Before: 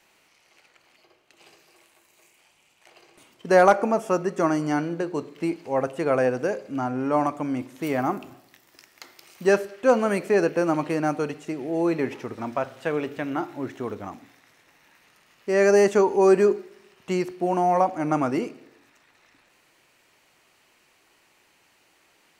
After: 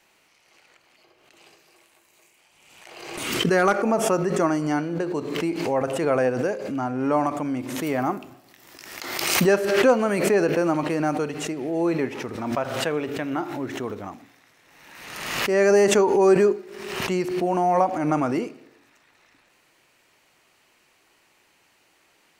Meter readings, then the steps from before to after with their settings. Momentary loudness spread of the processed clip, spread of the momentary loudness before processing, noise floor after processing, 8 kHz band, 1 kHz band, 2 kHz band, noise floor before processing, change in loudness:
14 LU, 13 LU, -62 dBFS, +8.5 dB, 0.0 dB, +2.5 dB, -63 dBFS, +1.0 dB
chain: spectral gain 3.25–3.85, 510–1100 Hz -7 dB; backwards sustainer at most 43 dB/s

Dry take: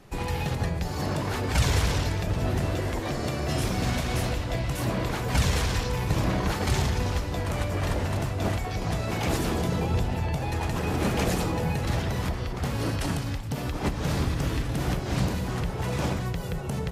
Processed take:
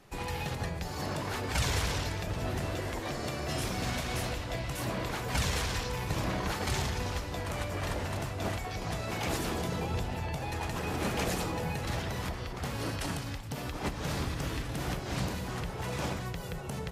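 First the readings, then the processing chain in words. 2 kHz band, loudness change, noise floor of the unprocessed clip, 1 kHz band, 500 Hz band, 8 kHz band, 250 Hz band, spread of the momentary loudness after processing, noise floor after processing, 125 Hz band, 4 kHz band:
-3.5 dB, -6.0 dB, -32 dBFS, -4.0 dB, -5.5 dB, -3.0 dB, -7.5 dB, 5 LU, -39 dBFS, -8.0 dB, -3.0 dB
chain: low shelf 460 Hz -5.5 dB; gain -3 dB

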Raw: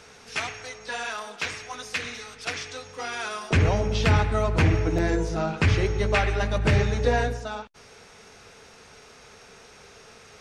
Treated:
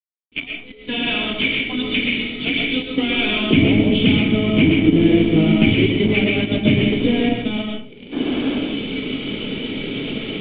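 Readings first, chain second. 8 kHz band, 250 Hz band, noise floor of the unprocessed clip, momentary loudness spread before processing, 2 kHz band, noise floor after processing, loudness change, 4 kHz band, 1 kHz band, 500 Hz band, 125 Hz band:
under -40 dB, +16.0 dB, -50 dBFS, 13 LU, +7.5 dB, -41 dBFS, +7.5 dB, +13.5 dB, -3.0 dB, +6.0 dB, +3.0 dB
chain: recorder AGC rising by 19 dB/s; HPF 120 Hz 24 dB/oct; spectral noise reduction 20 dB; high shelf 2500 Hz +10.5 dB; companded quantiser 2-bit; painted sound noise, 8.12–8.59, 240–1800 Hz -11 dBFS; vocal tract filter i; digital reverb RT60 0.44 s, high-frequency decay 0.65×, pre-delay 85 ms, DRR 0.5 dB; gain +1.5 dB

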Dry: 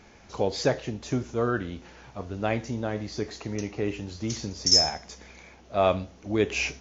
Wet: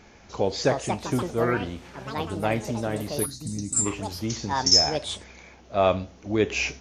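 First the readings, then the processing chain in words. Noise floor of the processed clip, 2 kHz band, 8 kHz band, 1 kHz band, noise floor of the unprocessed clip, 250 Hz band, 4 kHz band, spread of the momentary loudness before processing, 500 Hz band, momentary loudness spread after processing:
-52 dBFS, +2.0 dB, n/a, +4.0 dB, -53 dBFS, +2.0 dB, +1.5 dB, 19 LU, +2.0 dB, 15 LU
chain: echoes that change speed 0.428 s, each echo +6 st, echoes 2, each echo -6 dB; spectral gain 3.26–3.86, 320–3600 Hz -17 dB; gain +1.5 dB

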